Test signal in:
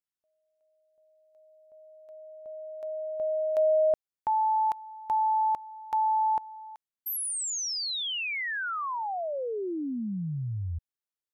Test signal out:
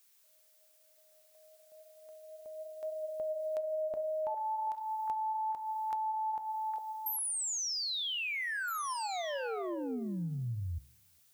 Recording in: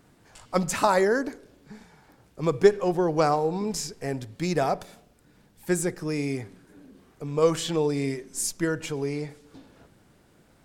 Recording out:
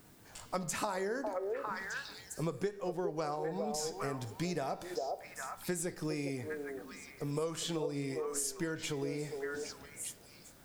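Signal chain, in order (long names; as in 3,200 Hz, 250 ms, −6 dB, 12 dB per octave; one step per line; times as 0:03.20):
parametric band 11,000 Hz +3.5 dB 2.2 octaves
background noise blue −64 dBFS
flanger 0.34 Hz, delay 9.1 ms, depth 8.7 ms, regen +81%
echo through a band-pass that steps 404 ms, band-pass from 560 Hz, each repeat 1.4 octaves, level −4 dB
downward compressor 6 to 1, threshold −36 dBFS
level +2.5 dB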